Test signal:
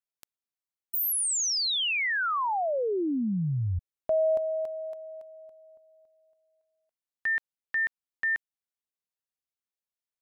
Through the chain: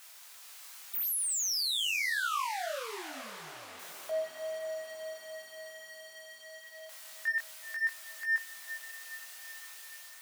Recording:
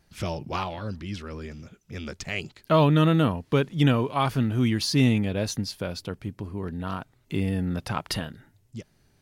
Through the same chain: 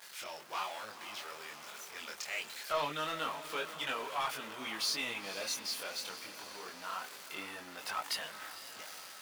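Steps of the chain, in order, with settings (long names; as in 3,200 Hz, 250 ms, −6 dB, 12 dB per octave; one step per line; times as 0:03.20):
converter with a step at zero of −33.5 dBFS
high-pass filter 880 Hz 12 dB per octave
automatic gain control gain up to 3.5 dB
soft clipping −17 dBFS
multi-voice chorus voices 2, 0.24 Hz, delay 23 ms, depth 4.3 ms
feedback delay with all-pass diffusion 489 ms, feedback 63%, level −12 dB
level −5.5 dB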